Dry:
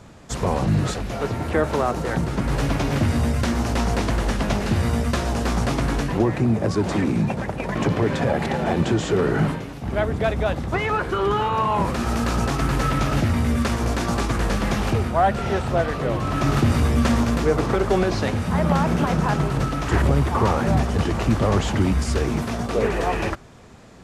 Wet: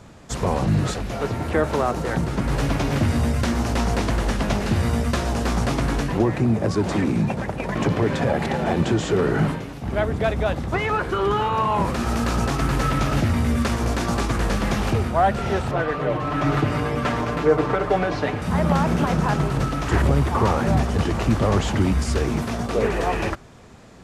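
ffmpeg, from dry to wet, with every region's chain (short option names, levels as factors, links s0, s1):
-filter_complex "[0:a]asettb=1/sr,asplit=3[s0][s1][s2];[s0]atrim=end=15.714[s3];[s1]atrim=start=15.71:end=18.42,asetpts=PTS-STARTPTS,afade=t=in:d=0.004:c=qsin,afade=t=out:st=2.706:d=0.004:c=qsin,bass=f=250:g=-6,treble=f=4000:g=-12,aecho=1:1:6.7:0.69,atrim=end_sample=119511[s4];[s2]atrim=start=18.416[s5];[s3][s4]acrossfade=d=0.004:c1=hsin:c2=qsin[s6];[s6][s5]acrossfade=d=0.004:c1=qsin:c2=hsin"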